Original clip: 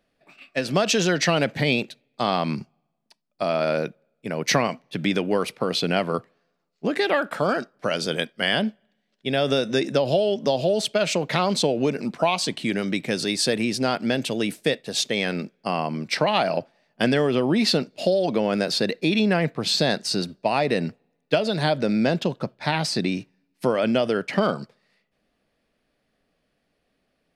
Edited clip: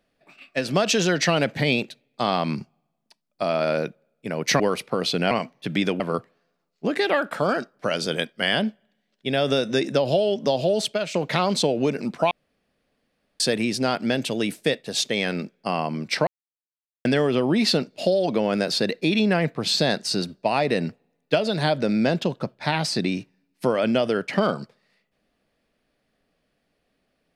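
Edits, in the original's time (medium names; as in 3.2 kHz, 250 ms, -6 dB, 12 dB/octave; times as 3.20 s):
4.60–5.29 s: move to 6.00 s
10.84–11.14 s: fade out linear, to -10.5 dB
12.31–13.40 s: room tone
16.27–17.05 s: mute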